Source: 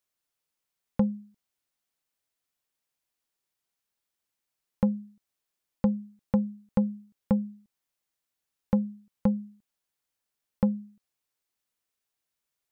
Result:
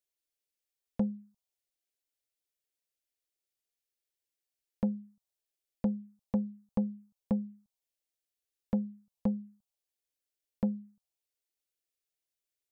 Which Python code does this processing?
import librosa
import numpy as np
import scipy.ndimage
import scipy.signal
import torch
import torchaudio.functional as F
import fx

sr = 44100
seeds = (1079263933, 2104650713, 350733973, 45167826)

y = fx.env_phaser(x, sr, low_hz=180.0, high_hz=1900.0, full_db=-23.0)
y = fx.doppler_dist(y, sr, depth_ms=0.1)
y = F.gain(torch.from_numpy(y), -5.0).numpy()